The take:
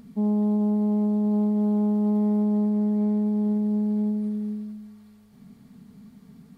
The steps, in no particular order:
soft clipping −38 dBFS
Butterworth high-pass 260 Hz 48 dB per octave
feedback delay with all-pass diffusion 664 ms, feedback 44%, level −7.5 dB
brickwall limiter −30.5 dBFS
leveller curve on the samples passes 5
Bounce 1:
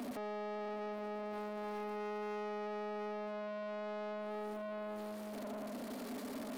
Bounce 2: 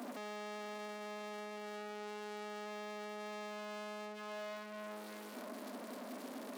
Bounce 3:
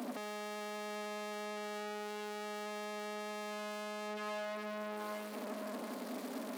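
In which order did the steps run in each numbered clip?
brickwall limiter, then feedback delay with all-pass diffusion, then leveller curve on the samples, then Butterworth high-pass, then soft clipping
brickwall limiter, then leveller curve on the samples, then feedback delay with all-pass diffusion, then soft clipping, then Butterworth high-pass
soft clipping, then feedback delay with all-pass diffusion, then leveller curve on the samples, then Butterworth high-pass, then brickwall limiter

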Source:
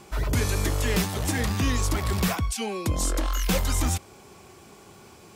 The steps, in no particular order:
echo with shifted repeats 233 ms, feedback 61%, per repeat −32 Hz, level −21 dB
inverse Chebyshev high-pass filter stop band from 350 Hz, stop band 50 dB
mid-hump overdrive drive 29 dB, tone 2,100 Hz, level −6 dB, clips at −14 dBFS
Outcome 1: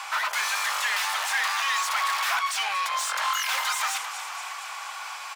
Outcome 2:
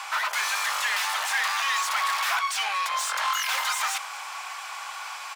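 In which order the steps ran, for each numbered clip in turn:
echo with shifted repeats, then mid-hump overdrive, then inverse Chebyshev high-pass filter
mid-hump overdrive, then echo with shifted repeats, then inverse Chebyshev high-pass filter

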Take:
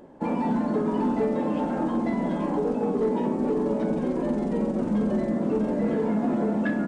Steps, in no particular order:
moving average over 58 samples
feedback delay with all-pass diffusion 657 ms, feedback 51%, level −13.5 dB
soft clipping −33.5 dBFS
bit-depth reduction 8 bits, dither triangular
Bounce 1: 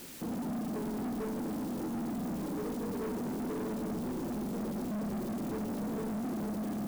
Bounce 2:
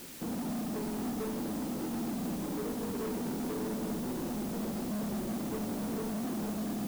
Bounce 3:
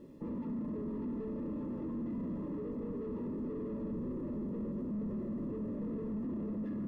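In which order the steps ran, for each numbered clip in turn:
moving average, then bit-depth reduction, then feedback delay with all-pass diffusion, then soft clipping
moving average, then soft clipping, then feedback delay with all-pass diffusion, then bit-depth reduction
feedback delay with all-pass diffusion, then bit-depth reduction, then soft clipping, then moving average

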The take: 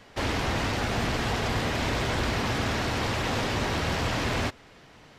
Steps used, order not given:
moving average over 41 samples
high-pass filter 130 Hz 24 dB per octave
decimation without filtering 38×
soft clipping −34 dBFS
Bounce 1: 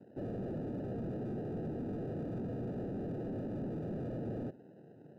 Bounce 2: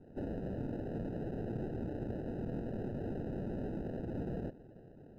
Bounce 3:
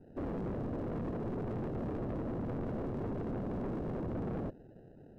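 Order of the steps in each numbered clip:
decimation without filtering, then high-pass filter, then soft clipping, then moving average
soft clipping, then high-pass filter, then decimation without filtering, then moving average
high-pass filter, then decimation without filtering, then moving average, then soft clipping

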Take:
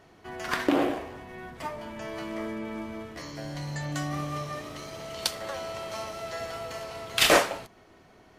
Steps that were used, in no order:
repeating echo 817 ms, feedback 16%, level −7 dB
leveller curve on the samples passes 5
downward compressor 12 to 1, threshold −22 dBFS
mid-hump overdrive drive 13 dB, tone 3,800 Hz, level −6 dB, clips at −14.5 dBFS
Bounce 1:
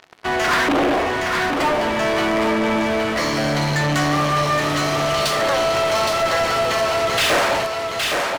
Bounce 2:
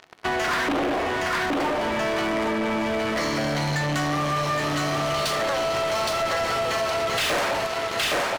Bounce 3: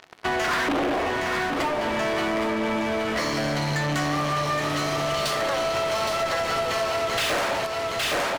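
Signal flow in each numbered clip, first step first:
downward compressor, then leveller curve on the samples, then repeating echo, then mid-hump overdrive
repeating echo, then leveller curve on the samples, then mid-hump overdrive, then downward compressor
leveller curve on the samples, then mid-hump overdrive, then repeating echo, then downward compressor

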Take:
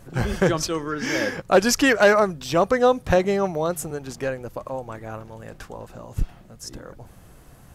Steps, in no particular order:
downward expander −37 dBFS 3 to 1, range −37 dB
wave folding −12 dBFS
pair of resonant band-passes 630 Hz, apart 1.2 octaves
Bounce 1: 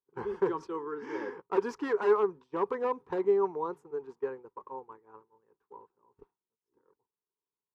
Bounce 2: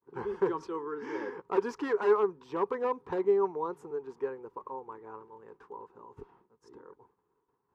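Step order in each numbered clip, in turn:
wave folding, then pair of resonant band-passes, then downward expander
downward expander, then wave folding, then pair of resonant band-passes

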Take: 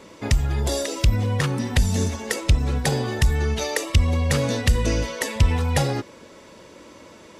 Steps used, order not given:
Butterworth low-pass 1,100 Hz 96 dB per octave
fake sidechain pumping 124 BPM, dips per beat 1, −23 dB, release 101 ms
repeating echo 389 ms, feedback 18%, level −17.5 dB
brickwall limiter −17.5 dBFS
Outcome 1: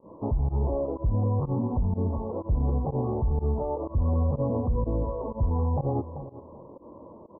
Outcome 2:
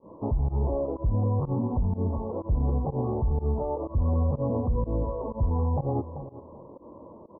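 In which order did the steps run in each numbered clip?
repeating echo, then fake sidechain pumping, then brickwall limiter, then Butterworth low-pass
repeating echo, then brickwall limiter, then Butterworth low-pass, then fake sidechain pumping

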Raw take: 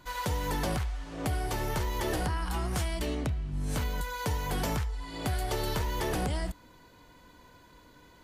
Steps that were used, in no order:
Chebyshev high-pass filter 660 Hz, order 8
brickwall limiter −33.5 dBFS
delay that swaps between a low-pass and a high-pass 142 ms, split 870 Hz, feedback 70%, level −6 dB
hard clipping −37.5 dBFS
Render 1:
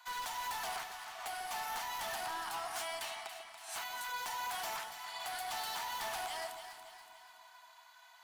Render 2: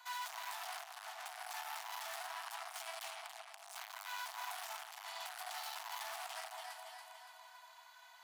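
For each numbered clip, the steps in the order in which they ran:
Chebyshev high-pass filter, then hard clipping, then brickwall limiter, then delay that swaps between a low-pass and a high-pass
delay that swaps between a low-pass and a high-pass, then hard clipping, then Chebyshev high-pass filter, then brickwall limiter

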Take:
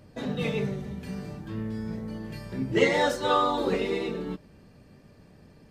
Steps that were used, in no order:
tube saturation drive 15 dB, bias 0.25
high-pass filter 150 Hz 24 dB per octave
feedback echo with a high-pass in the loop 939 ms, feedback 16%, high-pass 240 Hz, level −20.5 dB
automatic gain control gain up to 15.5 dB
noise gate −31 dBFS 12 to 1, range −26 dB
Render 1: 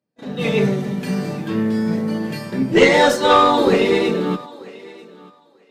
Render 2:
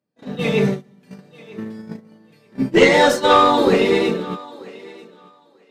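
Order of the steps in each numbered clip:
high-pass filter, then tube saturation, then automatic gain control, then noise gate, then feedback echo with a high-pass in the loop
high-pass filter, then noise gate, then tube saturation, then automatic gain control, then feedback echo with a high-pass in the loop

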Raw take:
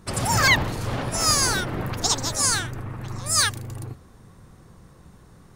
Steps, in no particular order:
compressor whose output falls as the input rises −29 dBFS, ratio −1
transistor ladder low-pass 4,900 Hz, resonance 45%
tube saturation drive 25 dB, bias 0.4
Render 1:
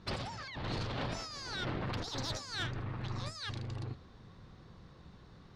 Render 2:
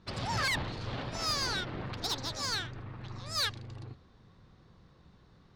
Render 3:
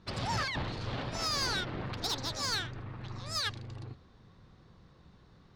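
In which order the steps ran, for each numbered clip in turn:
compressor whose output falls as the input rises, then transistor ladder low-pass, then tube saturation
transistor ladder low-pass, then tube saturation, then compressor whose output falls as the input rises
transistor ladder low-pass, then compressor whose output falls as the input rises, then tube saturation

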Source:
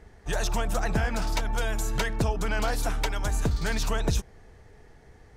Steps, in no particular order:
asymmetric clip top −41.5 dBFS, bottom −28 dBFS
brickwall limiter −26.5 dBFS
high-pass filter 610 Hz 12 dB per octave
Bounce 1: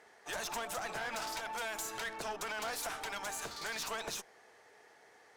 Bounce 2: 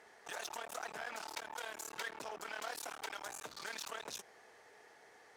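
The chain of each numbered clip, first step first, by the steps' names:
high-pass filter, then brickwall limiter, then asymmetric clip
brickwall limiter, then asymmetric clip, then high-pass filter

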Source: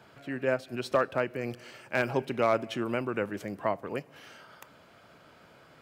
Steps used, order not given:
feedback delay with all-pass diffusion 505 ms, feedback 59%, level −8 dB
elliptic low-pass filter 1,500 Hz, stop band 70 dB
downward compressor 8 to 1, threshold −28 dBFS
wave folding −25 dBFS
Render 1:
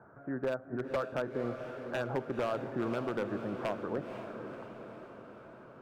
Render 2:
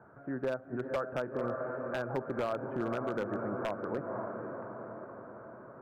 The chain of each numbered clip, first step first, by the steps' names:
elliptic low-pass filter, then downward compressor, then wave folding, then feedback delay with all-pass diffusion
feedback delay with all-pass diffusion, then downward compressor, then elliptic low-pass filter, then wave folding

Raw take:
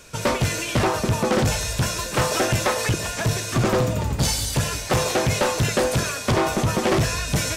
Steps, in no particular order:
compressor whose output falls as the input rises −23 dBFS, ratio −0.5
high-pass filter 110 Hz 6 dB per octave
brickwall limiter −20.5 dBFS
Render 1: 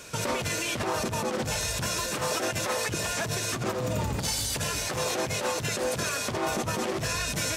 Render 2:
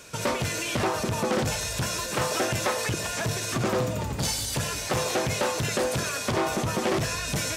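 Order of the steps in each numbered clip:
compressor whose output falls as the input rises, then high-pass filter, then brickwall limiter
brickwall limiter, then compressor whose output falls as the input rises, then high-pass filter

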